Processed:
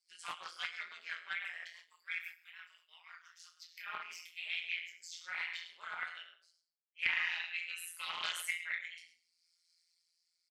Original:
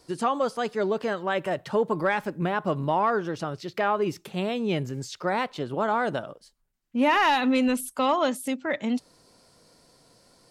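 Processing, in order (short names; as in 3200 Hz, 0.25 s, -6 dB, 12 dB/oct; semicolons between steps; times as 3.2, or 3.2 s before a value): per-bin expansion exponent 1.5; 1.69–3.86 differentiator; ladder high-pass 2000 Hz, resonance 70%; bell 7300 Hz +2.5 dB 0.32 oct; echo 0.104 s -11.5 dB; compressor 8:1, threshold -42 dBFS, peak gain reduction 13 dB; reverb RT60 0.55 s, pre-delay 10 ms, DRR -3.5 dB; rotary speaker horn 6 Hz, later 0.75 Hz, at 3.78; AM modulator 170 Hz, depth 90%; Doppler distortion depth 0.16 ms; gain +8 dB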